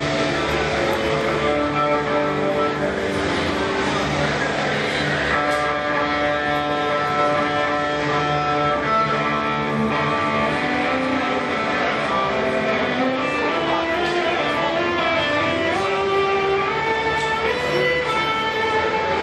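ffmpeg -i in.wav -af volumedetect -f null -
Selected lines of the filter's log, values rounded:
mean_volume: -20.4 dB
max_volume: -6.9 dB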